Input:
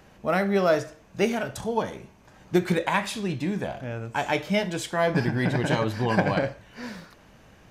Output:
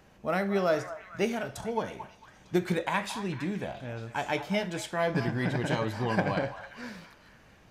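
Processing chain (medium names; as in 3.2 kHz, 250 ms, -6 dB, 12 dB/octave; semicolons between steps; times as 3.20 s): repeats whose band climbs or falls 225 ms, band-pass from 1 kHz, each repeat 0.7 oct, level -9 dB; trim -5 dB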